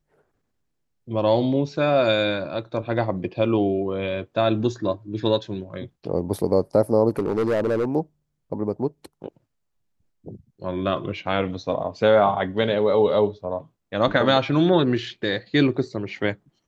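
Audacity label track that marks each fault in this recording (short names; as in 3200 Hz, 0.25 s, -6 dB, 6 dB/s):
7.090000	7.850000	clipped -18 dBFS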